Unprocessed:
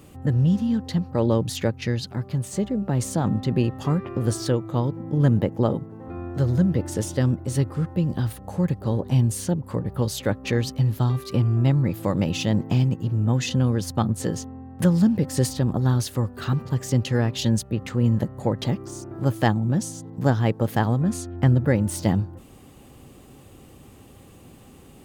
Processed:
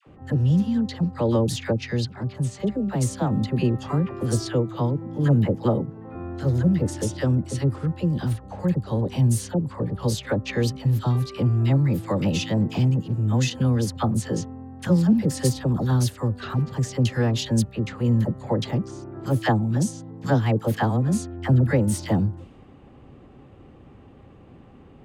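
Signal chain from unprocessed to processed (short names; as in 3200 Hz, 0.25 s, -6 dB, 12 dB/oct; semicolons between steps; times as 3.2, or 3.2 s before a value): low-pass opened by the level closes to 1800 Hz, open at -19.5 dBFS; dispersion lows, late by 67 ms, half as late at 860 Hz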